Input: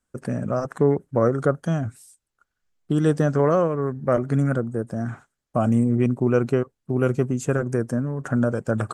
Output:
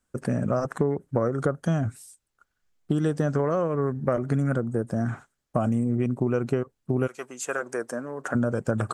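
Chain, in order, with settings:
0:07.06–0:08.34: high-pass filter 1,100 Hz → 370 Hz 12 dB per octave
downward compressor 10 to 1, threshold −22 dBFS, peak gain reduction 9.5 dB
level +2 dB

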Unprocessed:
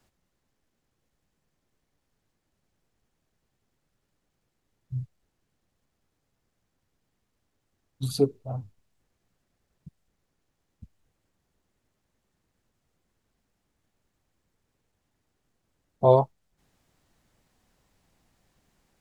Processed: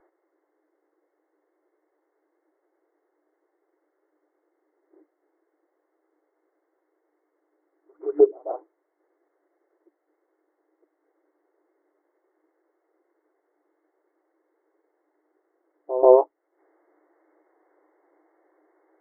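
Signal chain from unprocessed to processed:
dynamic equaliser 810 Hz, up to −4 dB, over −32 dBFS, Q 0.73
backwards echo 139 ms −16.5 dB
brick-wall band-pass 300–2,200 Hz
in parallel at −1.5 dB: downward compressor, threshold −30 dBFS, peak gain reduction 13.5 dB
on the sum: spectral tilt −4.5 dB per octave
level +2 dB

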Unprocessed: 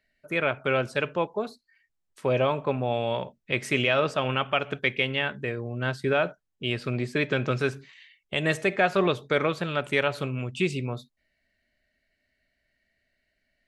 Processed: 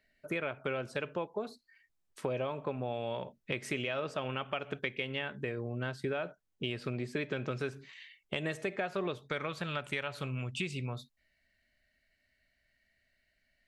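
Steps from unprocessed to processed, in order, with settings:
parametric band 370 Hz +2 dB 1.8 octaves, from 0:09.18 −6 dB
downward compressor 5 to 1, threshold −33 dBFS, peak gain reduction 15.5 dB

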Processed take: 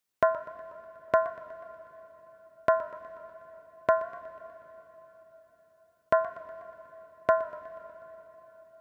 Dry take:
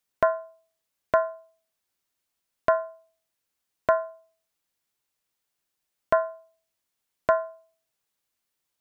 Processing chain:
high-pass filter 52 Hz
on a send at −15 dB: convolution reverb RT60 4.7 s, pre-delay 64 ms
on the sum: feedback echo with a swinging delay time 122 ms, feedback 63%, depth 117 cents, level −19 dB
level −2 dB

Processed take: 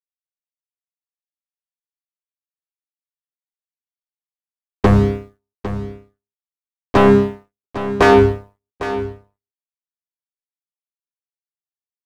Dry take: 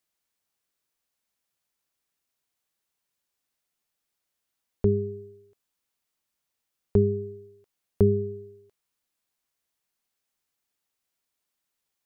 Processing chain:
low-shelf EQ 89 Hz −9 dB
leveller curve on the samples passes 2
chorus effect 0.28 Hz, delay 15.5 ms, depth 3.6 ms
in parallel at −4 dB: sine wavefolder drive 11 dB, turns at −11 dBFS
on the sum: power curve on the samples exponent 2
pitch-shifted copies added −12 semitones −13 dB, −7 semitones −8 dB
on a send: single-tap delay 804 ms −12.5 dB
on the sum: level +5.5 dB

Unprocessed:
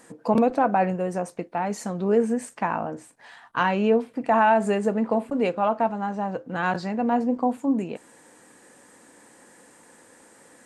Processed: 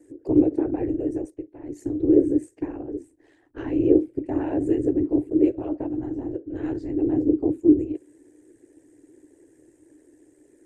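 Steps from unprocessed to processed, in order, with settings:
ring modulation 38 Hz
0:01.30–0:01.77: output level in coarse steps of 9 dB
0:02.94–0:03.58: low-shelf EQ 500 Hz +7 dB
random phases in short frames
drawn EQ curve 120 Hz 0 dB, 210 Hz −19 dB, 300 Hz +15 dB, 620 Hz −11 dB, 1,200 Hz −24 dB, 1,800 Hz −13 dB, 4,400 Hz −18 dB, 6,700 Hz −10 dB

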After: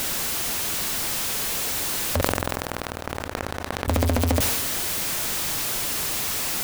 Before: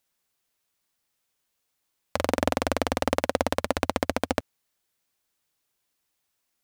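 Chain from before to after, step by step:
converter with a step at zero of −20.5 dBFS
in parallel at −2 dB: brickwall limiter −12.5 dBFS, peak gain reduction 9 dB
on the sum: low-shelf EQ 410 Hz +4.5 dB
0:02.21–0:03.88: power curve on the samples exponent 3
on a send at −19.5 dB: convolution reverb RT60 2.5 s, pre-delay 109 ms
on the sum: level that may fall only so fast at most 26 dB per second
level −5 dB

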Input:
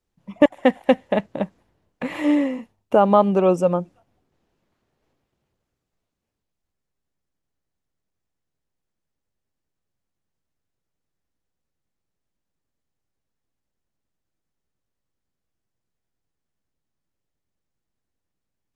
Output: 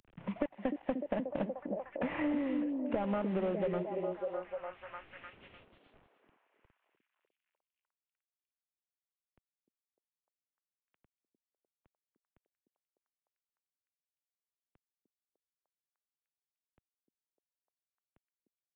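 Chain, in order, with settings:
variable-slope delta modulation 16 kbit/s
downward compressor, threshold −23 dBFS, peak gain reduction 12 dB
echo through a band-pass that steps 301 ms, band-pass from 300 Hz, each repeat 0.7 octaves, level −2.5 dB
multiband upward and downward compressor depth 70%
level −7.5 dB

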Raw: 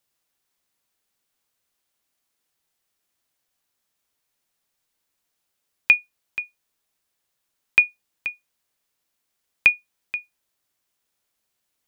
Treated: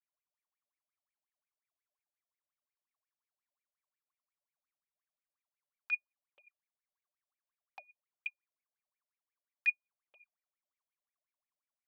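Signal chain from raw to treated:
flanger swept by the level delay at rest 6.8 ms, full sweep at −21.5 dBFS
LFO wah 5.6 Hz 570–2,400 Hz, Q 21
parametric band 1,100 Hz +8 dB 0.34 octaves

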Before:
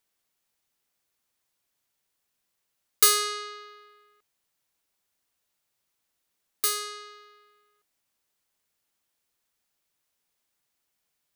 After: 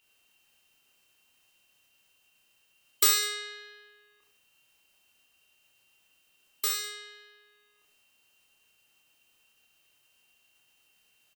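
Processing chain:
steady tone 3,100 Hz −63 dBFS
formants moved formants −2 semitones
reverse bouncing-ball delay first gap 30 ms, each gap 1.15×, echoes 5
level −4.5 dB

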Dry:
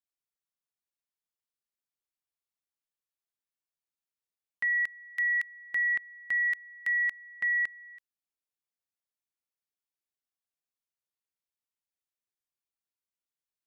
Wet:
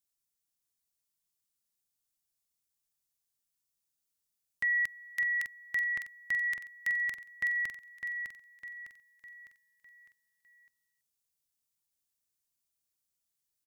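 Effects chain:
bass and treble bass +9 dB, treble +12 dB
repeating echo 605 ms, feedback 44%, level −7 dB
level −2 dB

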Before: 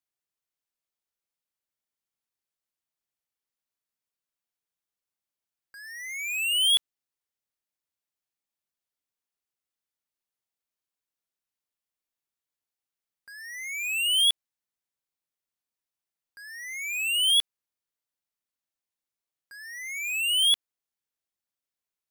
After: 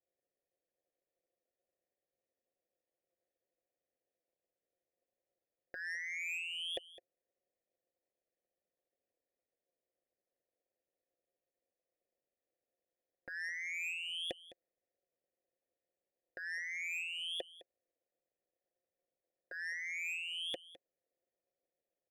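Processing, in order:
formant resonators in series e
downward compressor 3 to 1, threshold −58 dBFS, peak gain reduction 12 dB
leveller curve on the samples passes 2
low shelf with overshoot 800 Hz +10 dB, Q 1.5
amplitude modulation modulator 170 Hz, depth 80%
single-tap delay 209 ms −17 dB
level +16 dB

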